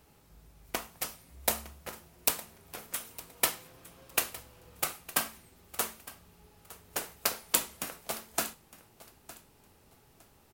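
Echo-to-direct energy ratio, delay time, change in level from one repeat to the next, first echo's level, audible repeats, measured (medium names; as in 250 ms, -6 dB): -18.0 dB, 910 ms, -13.0 dB, -18.0 dB, 2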